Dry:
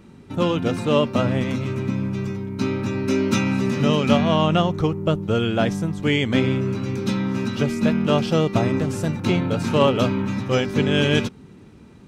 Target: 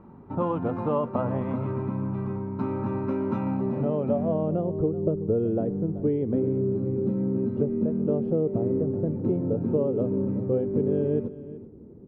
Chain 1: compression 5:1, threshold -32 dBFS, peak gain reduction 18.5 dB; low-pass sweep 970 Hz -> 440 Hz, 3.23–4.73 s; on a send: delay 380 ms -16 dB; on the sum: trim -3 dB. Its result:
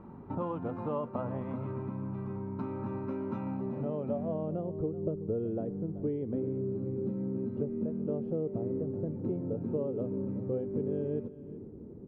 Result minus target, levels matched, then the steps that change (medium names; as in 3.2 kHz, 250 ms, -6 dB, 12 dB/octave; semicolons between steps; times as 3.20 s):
compression: peak gain reduction +8.5 dB
change: compression 5:1, threshold -21.5 dBFS, peak gain reduction 10 dB